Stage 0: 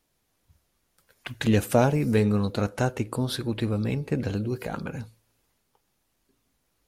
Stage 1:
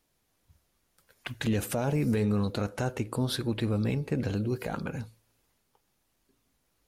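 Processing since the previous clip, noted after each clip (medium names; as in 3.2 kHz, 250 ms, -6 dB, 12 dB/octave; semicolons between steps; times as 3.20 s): peak limiter -18 dBFS, peak gain reduction 10.5 dB; trim -1 dB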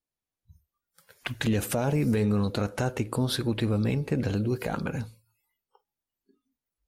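spectral noise reduction 26 dB; in parallel at +1.5 dB: compression, threshold -38 dBFS, peak gain reduction 14 dB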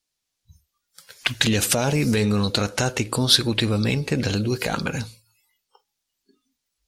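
peaking EQ 5.1 kHz +13.5 dB 2.5 oct; trim +3.5 dB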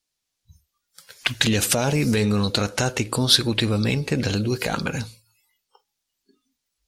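no audible change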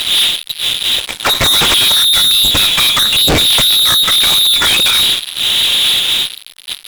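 wind noise 640 Hz -35 dBFS; frequency inversion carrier 3.9 kHz; fuzz box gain 42 dB, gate -45 dBFS; trim +4 dB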